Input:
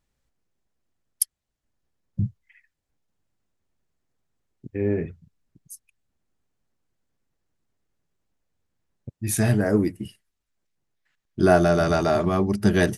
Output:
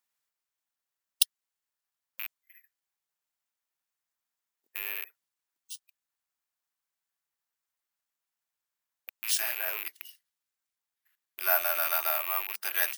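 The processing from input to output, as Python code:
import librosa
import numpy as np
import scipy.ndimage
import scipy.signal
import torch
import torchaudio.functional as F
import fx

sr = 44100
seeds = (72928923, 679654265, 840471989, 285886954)

y = fx.rattle_buzz(x, sr, strikes_db=-28.0, level_db=-21.0)
y = scipy.signal.sosfilt(scipy.signal.butter(4, 870.0, 'highpass', fs=sr, output='sos'), y)
y = (np.kron(y[::3], np.eye(3)[0]) * 3)[:len(y)]
y = y * librosa.db_to_amplitude(-5.0)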